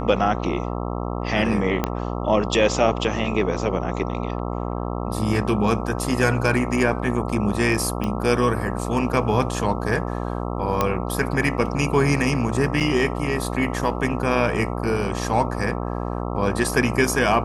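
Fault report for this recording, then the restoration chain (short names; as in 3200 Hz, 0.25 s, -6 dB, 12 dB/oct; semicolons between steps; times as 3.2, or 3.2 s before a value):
buzz 60 Hz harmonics 22 -27 dBFS
1.84 pop -7 dBFS
8.04 pop -13 dBFS
10.81 pop -6 dBFS
12.8–12.81 gap 6.6 ms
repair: de-click; de-hum 60 Hz, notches 22; interpolate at 12.8, 6.6 ms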